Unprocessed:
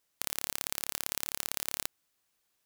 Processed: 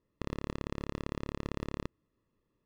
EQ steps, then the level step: running mean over 58 samples; air absorption 96 m; +16.5 dB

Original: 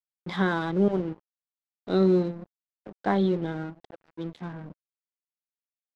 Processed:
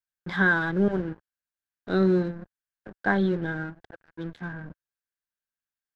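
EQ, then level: low shelf 61 Hz +10 dB; bell 79 Hz +4 dB 1.8 oct; bell 1600 Hz +14.5 dB 0.34 oct; -2.0 dB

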